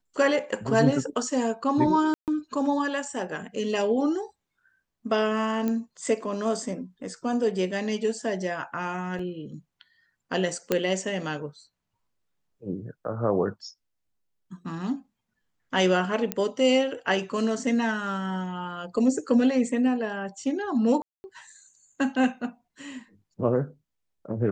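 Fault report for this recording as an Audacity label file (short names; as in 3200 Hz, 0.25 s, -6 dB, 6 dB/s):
2.140000	2.280000	gap 0.138 s
5.680000	5.680000	pop -16 dBFS
9.190000	9.190000	gap 4.1 ms
10.720000	10.720000	pop -9 dBFS
16.320000	16.320000	pop -10 dBFS
21.020000	21.240000	gap 0.22 s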